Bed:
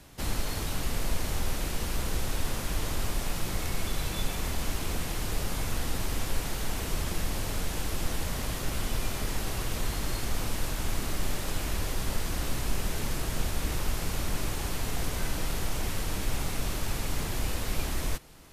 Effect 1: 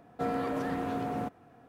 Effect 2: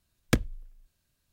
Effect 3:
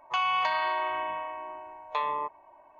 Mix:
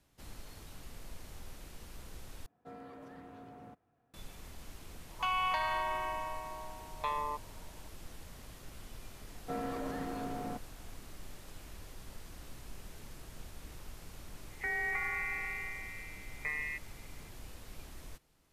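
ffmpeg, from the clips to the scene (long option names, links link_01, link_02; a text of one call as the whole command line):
ffmpeg -i bed.wav -i cue0.wav -i cue1.wav -i cue2.wav -filter_complex "[1:a]asplit=2[link_01][link_02];[3:a]asplit=2[link_03][link_04];[0:a]volume=-18.5dB[link_05];[link_01]asubboost=boost=3:cutoff=130[link_06];[link_04]lowpass=frequency=2600:width_type=q:width=0.5098,lowpass=frequency=2600:width_type=q:width=0.6013,lowpass=frequency=2600:width_type=q:width=0.9,lowpass=frequency=2600:width_type=q:width=2.563,afreqshift=-3000[link_07];[link_05]asplit=2[link_08][link_09];[link_08]atrim=end=2.464[link_10];[link_06]atrim=end=1.68,asetpts=PTS-STARTPTS,volume=-18dB[link_11];[link_09]atrim=start=4.136[link_12];[link_03]atrim=end=2.79,asetpts=PTS-STARTPTS,volume=-5.5dB,afade=type=in:duration=0.004:curve=hsin,afade=type=out:start_time=2.786:duration=0.004:curve=hsin,adelay=224469S[link_13];[link_02]atrim=end=1.68,asetpts=PTS-STARTPTS,volume=-6.5dB,afade=type=in:duration=0.004:curve=hsin,afade=type=out:start_time=1.676:duration=0.004:curve=hsin,adelay=9290[link_14];[link_07]atrim=end=2.79,asetpts=PTS-STARTPTS,volume=-8dB,afade=type=in:duration=0.004:curve=hsin,afade=type=out:start_time=2.786:duration=0.004:curve=hsin,adelay=14500[link_15];[link_10][link_11]acrossfade=duration=0.004:curve1=hsin:curve2=hsin[link_16];[link_16][link_12]acrossfade=duration=0.004:curve1=hsin:curve2=hsin[link_17];[link_17][link_13][link_14][link_15]amix=inputs=4:normalize=0" out.wav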